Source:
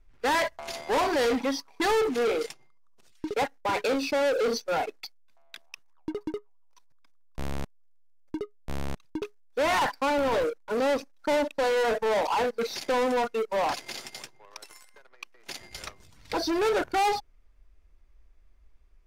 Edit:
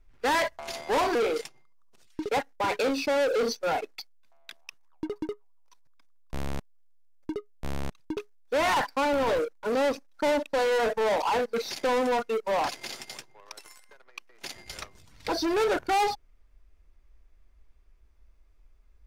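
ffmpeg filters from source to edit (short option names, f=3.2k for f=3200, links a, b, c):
-filter_complex "[0:a]asplit=2[a][b];[a]atrim=end=1.152[c];[b]atrim=start=2.198[d];[c][d]acrossfade=d=0.004:c1=hsin:c2=hsin"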